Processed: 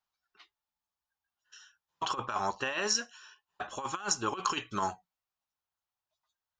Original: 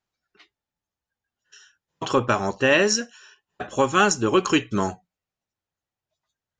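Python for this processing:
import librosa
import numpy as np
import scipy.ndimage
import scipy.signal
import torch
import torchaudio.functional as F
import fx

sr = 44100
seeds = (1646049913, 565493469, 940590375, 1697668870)

y = fx.graphic_eq(x, sr, hz=(125, 250, 500, 1000, 2000, 8000), db=(-5, -5, -7, 5, -6, -6))
y = fx.over_compress(y, sr, threshold_db=-25.0, ratio=-0.5)
y = fx.low_shelf(y, sr, hz=490.0, db=-9.0)
y = y * 10.0 ** (-3.5 / 20.0)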